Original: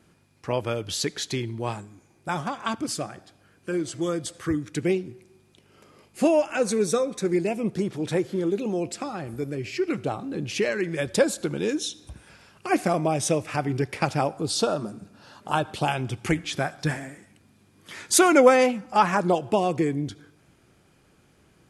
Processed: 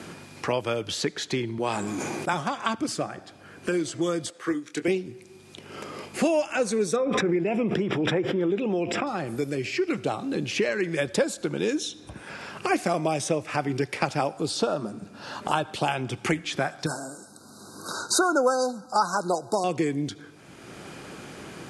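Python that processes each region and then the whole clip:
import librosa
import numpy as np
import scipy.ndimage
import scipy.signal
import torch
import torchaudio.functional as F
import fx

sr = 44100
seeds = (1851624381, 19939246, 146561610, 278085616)

y = fx.chain(x, sr, fx.highpass(hz=150.0, slope=12),
    fx.sustainer(db_per_s=24.0), at=(1.58, 2.33))
y = fx.chain(y, sr, fx.highpass(hz=300.0, slope=12),
    fx.doubler(ms=24.0, db=-10.0),
    fx.upward_expand(threshold_db=-34.0, expansion=1.5), at=(4.3, 4.88))
y = fx.chain(y, sr, fx.savgol(points=25),
    fx.pre_swell(db_per_s=21.0), at=(6.96, 9.07))
y = fx.chain(y, sr, fx.brickwall_bandstop(low_hz=1600.0, high_hz=3700.0),
    fx.tilt_eq(slope=2.5), at=(16.86, 19.64))
y = scipy.signal.sosfilt(scipy.signal.butter(2, 9800.0, 'lowpass', fs=sr, output='sos'), y)
y = fx.low_shelf(y, sr, hz=110.0, db=-10.0)
y = fx.band_squash(y, sr, depth_pct=70)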